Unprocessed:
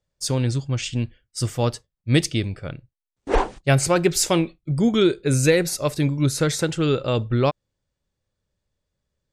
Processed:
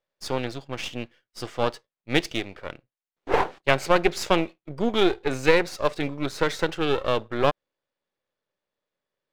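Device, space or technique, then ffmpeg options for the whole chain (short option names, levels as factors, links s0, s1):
crystal radio: -af "highpass=380,lowpass=3300,aeval=exprs='if(lt(val(0),0),0.251*val(0),val(0))':c=same,volume=1.58"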